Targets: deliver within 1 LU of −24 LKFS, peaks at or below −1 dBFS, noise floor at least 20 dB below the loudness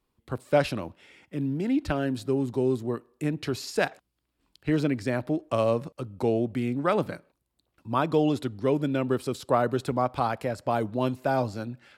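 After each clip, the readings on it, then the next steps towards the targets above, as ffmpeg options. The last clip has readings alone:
integrated loudness −27.5 LKFS; sample peak −9.0 dBFS; target loudness −24.0 LKFS
→ -af "volume=3.5dB"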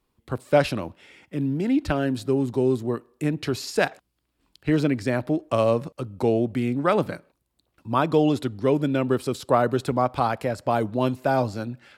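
integrated loudness −24.0 LKFS; sample peak −5.5 dBFS; background noise floor −75 dBFS

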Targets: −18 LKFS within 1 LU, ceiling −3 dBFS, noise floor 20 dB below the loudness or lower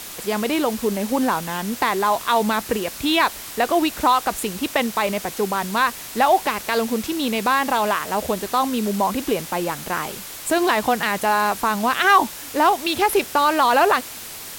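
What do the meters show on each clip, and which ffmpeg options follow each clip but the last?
background noise floor −35 dBFS; target noise floor −41 dBFS; integrated loudness −20.5 LKFS; sample peak −5.0 dBFS; target loudness −18.0 LKFS
→ -af "afftdn=noise_reduction=6:noise_floor=-35"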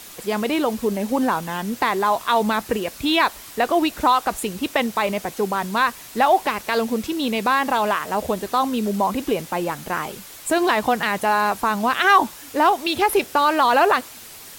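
background noise floor −41 dBFS; integrated loudness −21.0 LKFS; sample peak −5.0 dBFS; target loudness −18.0 LKFS
→ -af "volume=3dB,alimiter=limit=-3dB:level=0:latency=1"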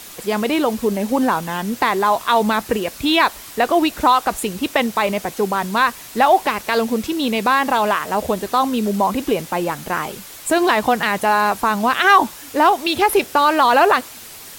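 integrated loudness −18.0 LKFS; sample peak −3.0 dBFS; background noise floor −38 dBFS

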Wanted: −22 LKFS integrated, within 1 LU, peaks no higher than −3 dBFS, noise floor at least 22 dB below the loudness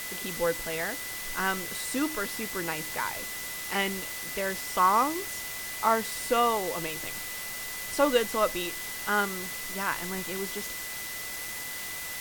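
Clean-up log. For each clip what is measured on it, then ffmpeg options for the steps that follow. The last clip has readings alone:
interfering tone 2,000 Hz; level of the tone −40 dBFS; background noise floor −37 dBFS; target noise floor −52 dBFS; integrated loudness −29.5 LKFS; sample peak −9.0 dBFS; target loudness −22.0 LKFS
→ -af "bandreject=frequency=2000:width=30"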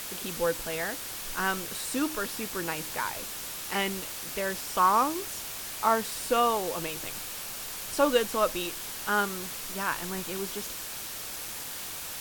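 interfering tone none found; background noise floor −38 dBFS; target noise floor −52 dBFS
→ -af "afftdn=noise_reduction=14:noise_floor=-38"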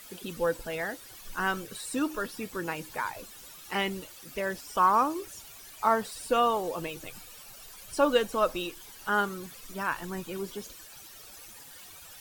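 background noise floor −49 dBFS; target noise floor −53 dBFS
→ -af "afftdn=noise_reduction=6:noise_floor=-49"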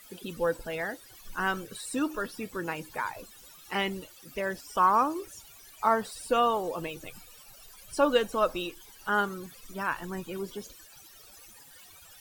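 background noise floor −53 dBFS; integrated loudness −30.0 LKFS; sample peak −10.0 dBFS; target loudness −22.0 LKFS
→ -af "volume=8dB,alimiter=limit=-3dB:level=0:latency=1"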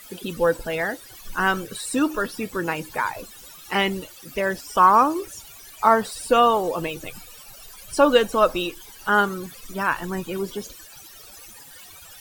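integrated loudness −22.5 LKFS; sample peak −3.0 dBFS; background noise floor −45 dBFS

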